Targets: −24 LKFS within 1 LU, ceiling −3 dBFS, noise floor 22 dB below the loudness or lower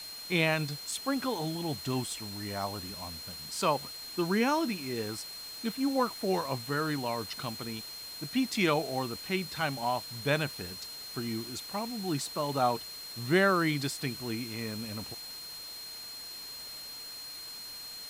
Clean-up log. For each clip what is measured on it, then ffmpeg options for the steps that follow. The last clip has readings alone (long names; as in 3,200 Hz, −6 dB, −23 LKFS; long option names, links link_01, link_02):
interfering tone 4,200 Hz; level of the tone −42 dBFS; background noise floor −44 dBFS; target noise floor −55 dBFS; integrated loudness −32.5 LKFS; sample peak −13.0 dBFS; target loudness −24.0 LKFS
→ -af "bandreject=frequency=4200:width=30"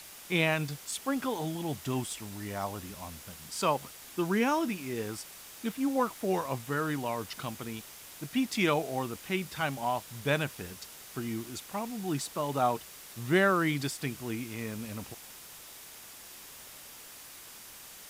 interfering tone none found; background noise floor −49 dBFS; target noise floor −55 dBFS
→ -af "afftdn=noise_reduction=6:noise_floor=-49"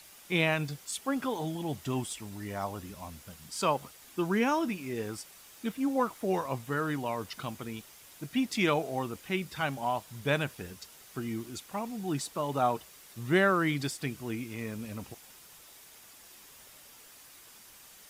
background noise floor −54 dBFS; target noise floor −55 dBFS
→ -af "afftdn=noise_reduction=6:noise_floor=-54"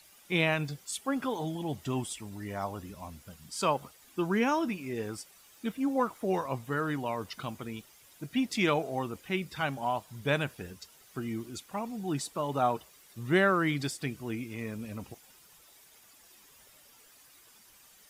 background noise floor −59 dBFS; integrated loudness −32.5 LKFS; sample peak −13.5 dBFS; target loudness −24.0 LKFS
→ -af "volume=8.5dB"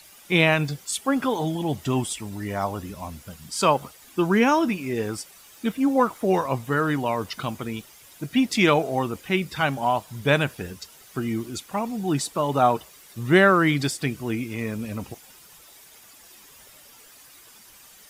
integrated loudness −24.0 LKFS; sample peak −5.0 dBFS; background noise floor −50 dBFS